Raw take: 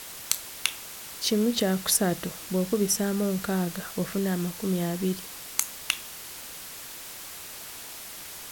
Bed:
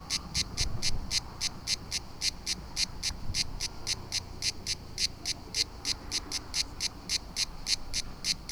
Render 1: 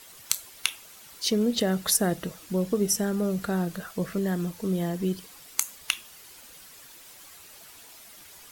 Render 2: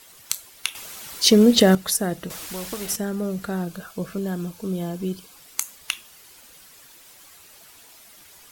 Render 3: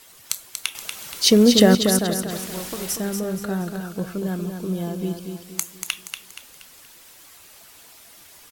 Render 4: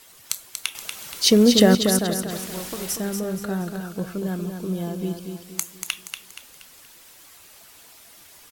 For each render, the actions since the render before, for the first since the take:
denoiser 10 dB, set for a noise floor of -41 dBFS
0.75–1.75 gain +10.5 dB; 2.3–2.96 spectral compressor 2:1; 3.64–5.37 Butterworth band-stop 1900 Hz, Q 5.7
feedback echo 0.237 s, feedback 41%, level -6.5 dB
gain -1 dB

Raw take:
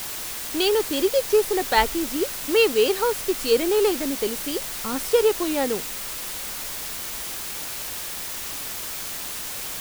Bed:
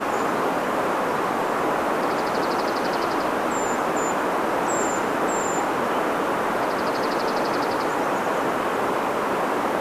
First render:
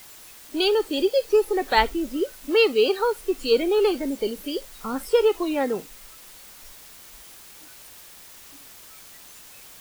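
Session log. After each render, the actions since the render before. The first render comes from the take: noise print and reduce 14 dB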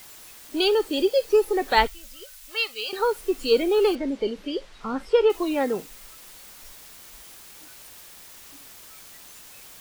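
1.87–2.93 passive tone stack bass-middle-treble 10-0-10; 3.95–5.3 LPF 4000 Hz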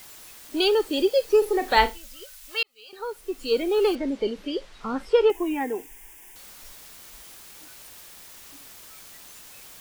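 1.38–1.98 flutter echo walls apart 6.6 m, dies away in 0.21 s; 2.63–4.01 fade in; 5.3–6.36 fixed phaser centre 850 Hz, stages 8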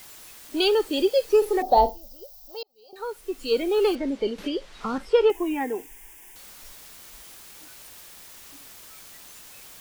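1.62–2.96 EQ curve 420 Hz 0 dB, 730 Hz +10 dB, 1500 Hz -25 dB, 2200 Hz -28 dB, 5300 Hz -2 dB, 9600 Hz -23 dB, 15000 Hz +2 dB; 4.38–4.98 three-band squash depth 70%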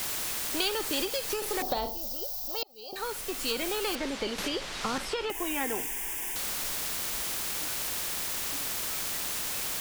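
compressor, threshold -23 dBFS, peak gain reduction 10 dB; spectral compressor 2:1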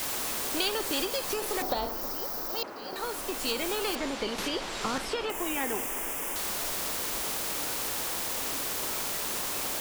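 add bed -18.5 dB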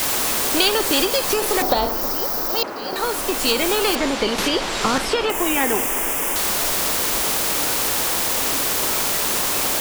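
gain +11.5 dB

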